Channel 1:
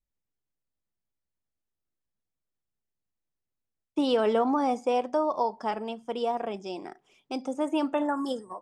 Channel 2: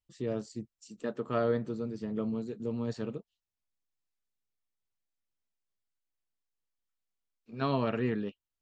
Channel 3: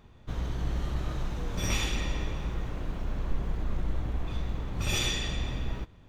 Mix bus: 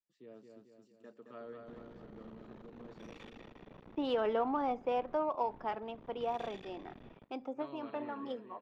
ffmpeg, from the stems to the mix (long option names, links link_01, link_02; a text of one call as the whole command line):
ffmpeg -i stem1.wav -i stem2.wav -i stem3.wav -filter_complex "[0:a]lowshelf=frequency=450:gain=-4.5,adynamicsmooth=sensitivity=5:basefreq=3200,volume=-5.5dB[link_01];[1:a]crystalizer=i=1:c=0,volume=-19dB,asplit=3[link_02][link_03][link_04];[link_03]volume=-4.5dB[link_05];[2:a]tiltshelf=frequency=1100:gain=5,acompressor=threshold=-25dB:ratio=6,aeval=exprs='max(val(0),0)':channel_layout=same,adelay=1400,volume=-11dB[link_06];[link_04]apad=whole_len=380001[link_07];[link_01][link_07]sidechaincompress=threshold=-52dB:ratio=8:attack=25:release=183[link_08];[link_05]aecho=0:1:220|440|660|880|1100|1320|1540|1760:1|0.54|0.292|0.157|0.085|0.0459|0.0248|0.0134[link_09];[link_08][link_02][link_06][link_09]amix=inputs=4:normalize=0,acrossover=split=170 4000:gain=0.0891 1 0.141[link_10][link_11][link_12];[link_10][link_11][link_12]amix=inputs=3:normalize=0" out.wav